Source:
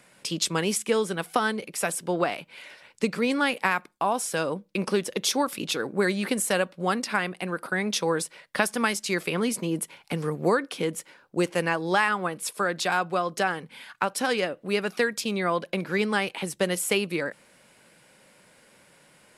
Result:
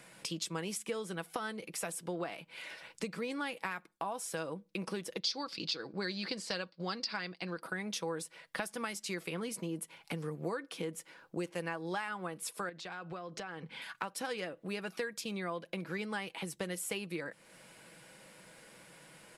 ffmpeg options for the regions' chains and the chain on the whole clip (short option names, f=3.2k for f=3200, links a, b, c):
-filter_complex "[0:a]asettb=1/sr,asplit=3[a][b][c];[a]atrim=end=5.204[d];[b]atrim=start=5.2:end=7.62,asetpts=PTS-STARTPTS,afade=t=in:d=0.004:c=qsin,afade=t=out:st=2.416:d=0.004:c=qsin,agate=range=-8dB:threshold=-41dB:ratio=16:release=100:detection=peak,lowpass=f=4.7k:t=q:w=8.5[e];[c]atrim=start=7.616[f];[d][e]acrossfade=d=0.004:c1=hsin:c2=qsin[g];[g][f]acrossfade=d=0.004:c1=qsin:c2=hsin,asettb=1/sr,asplit=3[h][i][j];[h]atrim=end=12.694[k];[i]atrim=start=12.69:end=13.82,asetpts=PTS-STARTPTS,afade=t=in:d=0.004:c=qsin,afade=t=out:st=1.126:d=0.004:c=qsin,lowpass=5.3k,acompressor=threshold=-37dB:ratio=3:attack=3.2:release=140:knee=1:detection=peak[l];[j]atrim=start=13.816[m];[k][l]acrossfade=d=0.004:c1=hsin:c2=qsin[n];[n][m]acrossfade=d=0.004:c1=qsin:c2=hsin,aecho=1:1:6.1:0.35,acompressor=threshold=-42dB:ratio=2.5"